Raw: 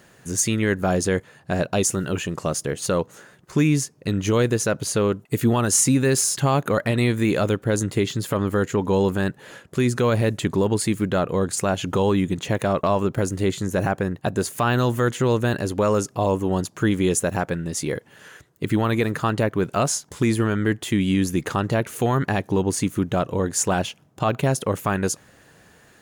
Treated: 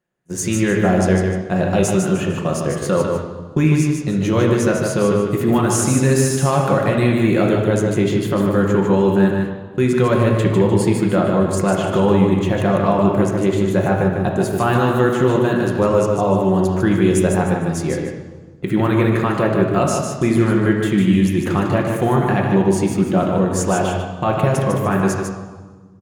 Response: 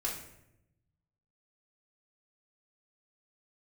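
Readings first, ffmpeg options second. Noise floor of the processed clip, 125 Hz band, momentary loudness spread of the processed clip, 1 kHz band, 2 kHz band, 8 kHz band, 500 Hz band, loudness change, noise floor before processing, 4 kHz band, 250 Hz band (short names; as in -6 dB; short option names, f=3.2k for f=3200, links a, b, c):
-36 dBFS, +5.5 dB, 6 LU, +5.0 dB, +3.5 dB, -2.5 dB, +6.0 dB, +5.5 dB, -54 dBFS, -0.5 dB, +6.5 dB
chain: -filter_complex "[0:a]aecho=1:1:151|302|453|604:0.562|0.191|0.065|0.0221,agate=range=-29dB:threshold=-28dB:ratio=16:detection=peak,asplit=2[a][b];[1:a]atrim=start_sample=2205,asetrate=22491,aresample=44100,lowpass=2.9k[c];[b][c]afir=irnorm=-1:irlink=0,volume=-4dB[d];[a][d]amix=inputs=2:normalize=0,volume=-3dB"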